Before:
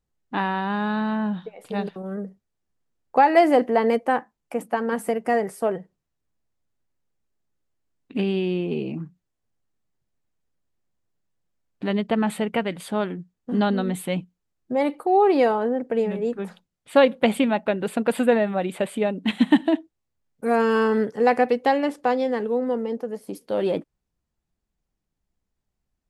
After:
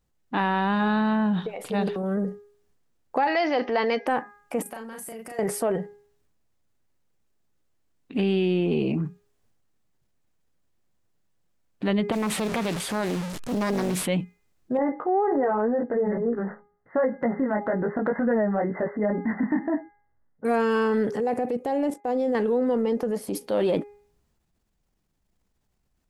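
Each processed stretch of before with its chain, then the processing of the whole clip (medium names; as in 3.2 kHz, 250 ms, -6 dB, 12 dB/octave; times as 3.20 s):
3.27–4.07 s: steep low-pass 5.9 kHz 96 dB/octave + tilt EQ +3.5 dB/octave
4.62–5.39 s: pre-emphasis filter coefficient 0.8 + compression 10:1, threshold -41 dBFS + doubling 36 ms -3 dB
12.12–14.06 s: one-bit delta coder 64 kbps, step -34.5 dBFS + compression 5:1, threshold -26 dBFS + loudspeaker Doppler distortion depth 0.55 ms
14.77–20.45 s: brick-wall FIR low-pass 2.1 kHz + chorus 2 Hz, delay 17 ms, depth 2.7 ms
21.20–22.35 s: expander -38 dBFS + high-order bell 2.3 kHz -9.5 dB 2.6 oct + level held to a coarse grid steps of 14 dB
whole clip: de-hum 410.8 Hz, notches 6; compression, threshold -25 dBFS; transient shaper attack -4 dB, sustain +5 dB; trim +5.5 dB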